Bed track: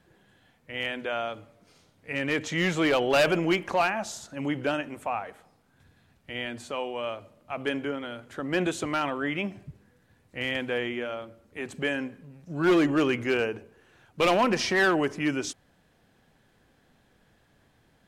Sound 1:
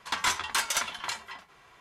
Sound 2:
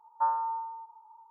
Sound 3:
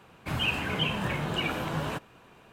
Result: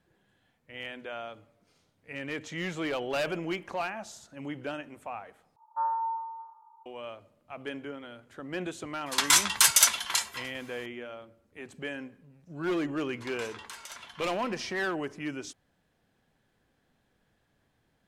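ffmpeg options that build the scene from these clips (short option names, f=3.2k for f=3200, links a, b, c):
-filter_complex "[1:a]asplit=2[a][b];[0:a]volume=-8.5dB[c];[2:a]aecho=1:1:30|75|142.5|243.8|395.6|623.4:0.631|0.398|0.251|0.158|0.1|0.0631[d];[a]crystalizer=i=3.5:c=0[e];[b]acompressor=threshold=-31dB:ratio=6:attack=3.2:release=140:knee=1:detection=peak[f];[c]asplit=2[g][h];[g]atrim=end=5.564[i];[d]atrim=end=1.3,asetpts=PTS-STARTPTS,volume=-5.5dB[j];[h]atrim=start=6.856[k];[e]atrim=end=1.8,asetpts=PTS-STARTPTS,volume=-1dB,afade=t=in:d=0.004:c=hsin,afade=t=out:st=1.796:d=0.004:c=hsin,adelay=399546S[l];[f]atrim=end=1.8,asetpts=PTS-STARTPTS,volume=-9dB,afade=t=in:d=0.004:c=hsin,afade=t=out:st=1.796:d=0.004:c=hsin,adelay=13150[m];[i][j]acrossfade=d=0.004:c1=hsin:c2=hsin[n];[n][k]acrossfade=d=0.004:c1=hsin:c2=hsin[o];[o][l][m]amix=inputs=3:normalize=0"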